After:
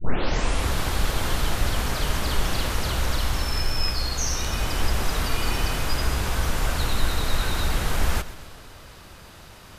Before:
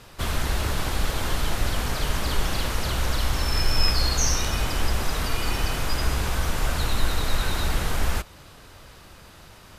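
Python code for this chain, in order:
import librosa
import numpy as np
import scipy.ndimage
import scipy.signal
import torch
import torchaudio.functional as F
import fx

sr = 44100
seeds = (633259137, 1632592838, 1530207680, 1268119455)

p1 = fx.tape_start_head(x, sr, length_s=0.73)
p2 = p1 + fx.echo_feedback(p1, sr, ms=129, feedback_pct=58, wet_db=-16.5, dry=0)
y = fx.rider(p2, sr, range_db=10, speed_s=0.5)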